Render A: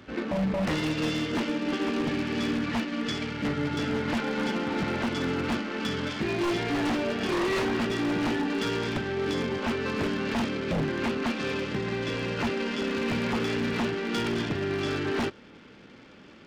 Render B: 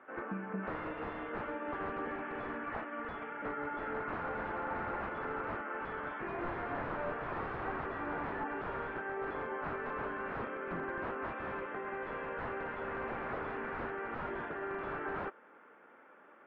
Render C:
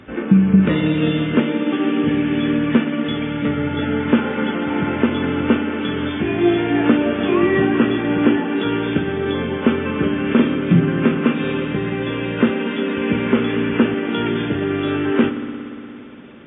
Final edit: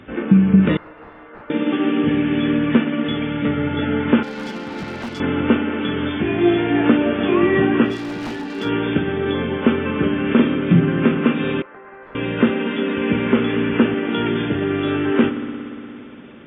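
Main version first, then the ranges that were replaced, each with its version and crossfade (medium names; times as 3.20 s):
C
0.77–1.50 s: from B
4.23–5.20 s: from A
7.91–8.63 s: from A, crossfade 0.16 s
11.62–12.15 s: from B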